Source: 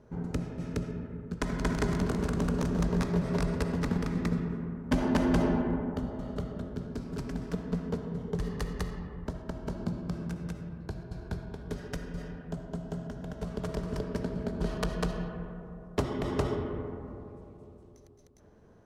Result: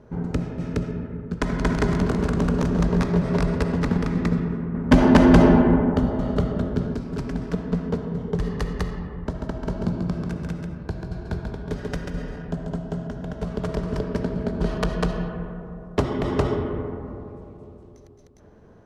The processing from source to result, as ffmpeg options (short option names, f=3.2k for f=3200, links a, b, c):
-filter_complex "[0:a]asettb=1/sr,asplit=3[a][b][c];[a]atrim=end=4.744[d];[b]atrim=start=4.74:end=6.95,asetpts=PTS-STARTPTS,afade=t=in:d=0.004:c=qsin,afade=t=out:st=2.206:d=0.004:c=qsin,acontrast=32[e];[c]atrim=start=6.946[f];[d][e]acrossfade=d=0.004:c1=hsin:c2=qsin[g];[g][f]acrossfade=d=0.004:c1=qsin:c2=hsin,asettb=1/sr,asplit=3[h][i][j];[h]atrim=end=9.264[k];[i]atrim=start=9.26:end=12.79,asetpts=PTS-STARTPTS,afade=t=in:d=0.004:c=qsin,afade=t=out:st=3.526:d=0.004:c=qsin,aecho=1:1:139:0.562,atrim=end_sample=155673[l];[j]atrim=start=12.786[m];[k][l]acrossfade=d=0.004:c1=hsin:c2=qsin[n];[n][m]acrossfade=d=0.004:c1=qsin:c2=hsin,highshelf=f=7.2k:g=-11,volume=7.5dB"